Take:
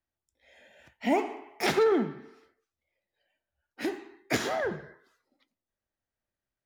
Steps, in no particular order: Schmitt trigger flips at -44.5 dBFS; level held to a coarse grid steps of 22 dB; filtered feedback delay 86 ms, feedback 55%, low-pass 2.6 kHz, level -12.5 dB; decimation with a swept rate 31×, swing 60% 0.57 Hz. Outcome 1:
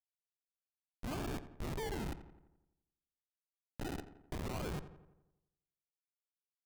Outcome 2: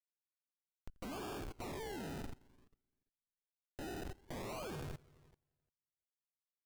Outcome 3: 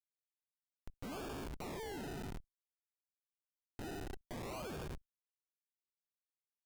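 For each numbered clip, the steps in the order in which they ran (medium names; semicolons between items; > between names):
decimation with a swept rate > level held to a coarse grid > Schmitt trigger > filtered feedback delay; Schmitt trigger > filtered feedback delay > decimation with a swept rate > level held to a coarse grid; filtered feedback delay > decimation with a swept rate > Schmitt trigger > level held to a coarse grid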